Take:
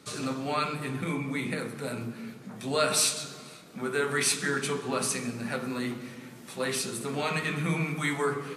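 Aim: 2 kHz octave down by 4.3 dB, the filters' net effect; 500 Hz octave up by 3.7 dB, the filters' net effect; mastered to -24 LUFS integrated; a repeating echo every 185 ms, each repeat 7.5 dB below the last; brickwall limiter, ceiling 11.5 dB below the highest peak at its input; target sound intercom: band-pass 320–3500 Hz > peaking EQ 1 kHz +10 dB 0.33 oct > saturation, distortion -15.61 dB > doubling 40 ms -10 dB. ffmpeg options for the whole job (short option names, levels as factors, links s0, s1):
-filter_complex "[0:a]equalizer=f=500:t=o:g=5.5,equalizer=f=2000:t=o:g=-6,alimiter=limit=0.0668:level=0:latency=1,highpass=320,lowpass=3500,equalizer=f=1000:t=o:w=0.33:g=10,aecho=1:1:185|370|555|740|925:0.422|0.177|0.0744|0.0312|0.0131,asoftclip=threshold=0.0398,asplit=2[s0][s1];[s1]adelay=40,volume=0.316[s2];[s0][s2]amix=inputs=2:normalize=0,volume=3.98"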